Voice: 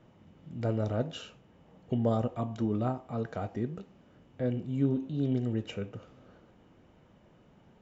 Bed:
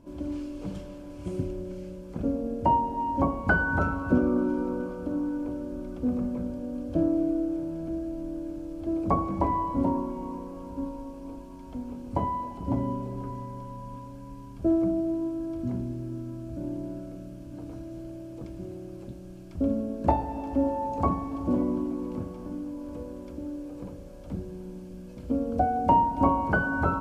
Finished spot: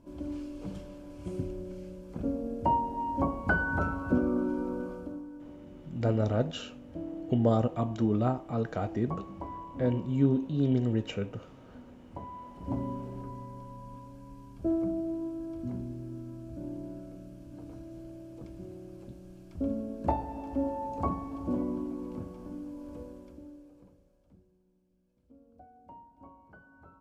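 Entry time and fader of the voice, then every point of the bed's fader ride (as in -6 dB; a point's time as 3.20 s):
5.40 s, +3.0 dB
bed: 4.96 s -4 dB
5.26 s -14.5 dB
12.29 s -14.5 dB
12.72 s -5.5 dB
23.03 s -5.5 dB
24.65 s -30.5 dB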